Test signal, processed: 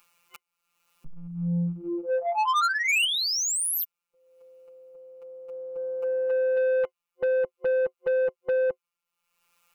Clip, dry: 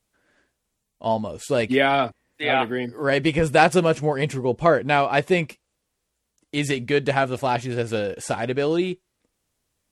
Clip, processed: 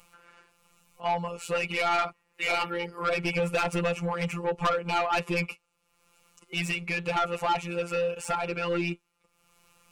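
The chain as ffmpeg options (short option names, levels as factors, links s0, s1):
-af "acompressor=threshold=0.126:ratio=3,afftfilt=real='hypot(re,im)*cos(PI*b)':imag='0':win_size=1024:overlap=0.75,superequalizer=6b=0.562:7b=1.41:9b=2.24:10b=3.55:12b=2.82,asoftclip=type=tanh:threshold=0.0944,acompressor=mode=upward:threshold=0.00631:ratio=2.5"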